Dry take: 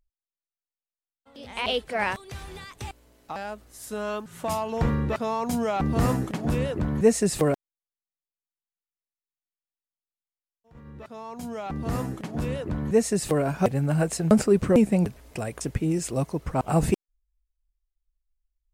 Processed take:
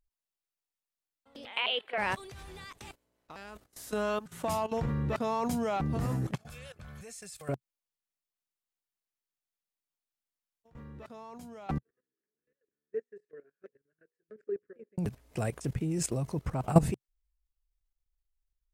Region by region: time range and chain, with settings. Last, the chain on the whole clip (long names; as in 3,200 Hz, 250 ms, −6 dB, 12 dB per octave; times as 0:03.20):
0:01.45–0:01.98: high-pass filter 470 Hz + high shelf with overshoot 4,300 Hz −11.5 dB, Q 3 + upward compression, threshold −38 dBFS
0:02.77–0:03.92: ceiling on every frequency bin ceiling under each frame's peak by 12 dB + noise gate −48 dBFS, range −10 dB + one half of a high-frequency compander decoder only
0:06.35–0:07.49: downward expander −26 dBFS + guitar amp tone stack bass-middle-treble 10-0-10 + notch comb filter 960 Hz
0:11.78–0:14.98: pair of resonant band-passes 840 Hz, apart 2 octaves + mains-hum notches 60/120/180/240/300/360/420/480/540 Hz + expander for the loud parts 2.5 to 1, over −43 dBFS
whole clip: dynamic equaliser 130 Hz, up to +7 dB, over −41 dBFS, Q 2.4; output level in coarse steps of 16 dB; level +1.5 dB